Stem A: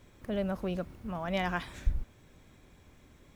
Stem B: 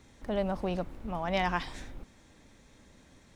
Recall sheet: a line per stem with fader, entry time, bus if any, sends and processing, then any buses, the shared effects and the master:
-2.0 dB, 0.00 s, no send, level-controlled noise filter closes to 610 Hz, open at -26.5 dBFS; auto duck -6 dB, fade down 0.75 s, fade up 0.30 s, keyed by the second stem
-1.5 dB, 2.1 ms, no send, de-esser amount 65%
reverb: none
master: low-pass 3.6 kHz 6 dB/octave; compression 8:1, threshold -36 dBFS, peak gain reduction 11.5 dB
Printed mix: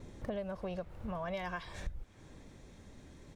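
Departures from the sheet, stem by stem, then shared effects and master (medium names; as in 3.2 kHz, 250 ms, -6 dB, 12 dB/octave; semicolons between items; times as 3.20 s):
stem A -2.0 dB -> +9.0 dB; master: missing low-pass 3.6 kHz 6 dB/octave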